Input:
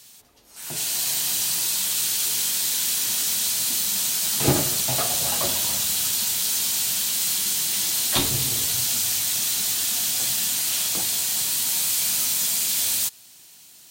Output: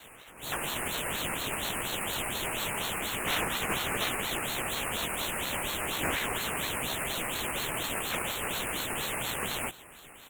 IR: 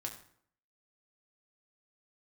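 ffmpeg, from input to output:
-filter_complex "[0:a]lowpass=f=3800:w=0.5412,lowpass=f=3800:w=1.3066,equalizer=f=1900:t=o:w=1.2:g=11,acrusher=samples=9:mix=1:aa=0.000001,aeval=exprs='(mod(8.41*val(0)+1,2)-1)/8.41':c=same,alimiter=level_in=1.78:limit=0.0631:level=0:latency=1:release=51,volume=0.562,asuperstop=centerf=2700:order=12:qfactor=0.8,asplit=2[s0][s1];[s1]adelay=20,volume=0.668[s2];[s0][s2]amix=inputs=2:normalize=0,asetrate=59535,aresample=44100,aeval=exprs='val(0)*sin(2*PI*1400*n/s+1400*0.6/4.2*sin(2*PI*4.2*n/s))':c=same,volume=2.66"

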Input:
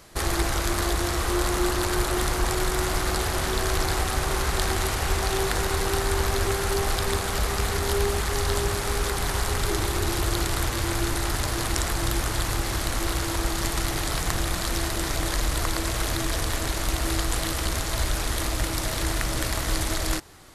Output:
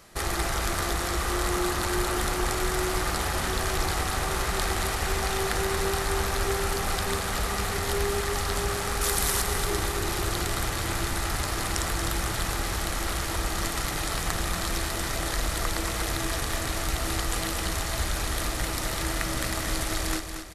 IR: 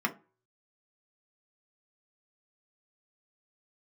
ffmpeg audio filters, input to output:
-filter_complex "[0:a]asettb=1/sr,asplit=3[s0][s1][s2];[s0]atrim=end=9.014[s3];[s1]atrim=start=9.01:end=9.42,asetpts=PTS-STARTPTS,afade=t=in:d=0.004:c=qsin,afade=t=out:st=0.406:d=0.004:c=qsin,highshelf=f=5000:g=11.5[s4];[s2]atrim=start=9.416[s5];[s3][s4]acrossfade=d=0.004:c1=hsin:c2=qsin[s6];[s6][s5]acrossfade=d=0.004:c1=qsin:c2=hsin,aecho=1:1:231|462|693|924|1155:0.398|0.179|0.0806|0.0363|0.0163,asplit=2[s7][s8];[1:a]atrim=start_sample=2205[s9];[s8][s9]afir=irnorm=-1:irlink=0,volume=0.15[s10];[s7][s10]amix=inputs=2:normalize=0,volume=0.668"

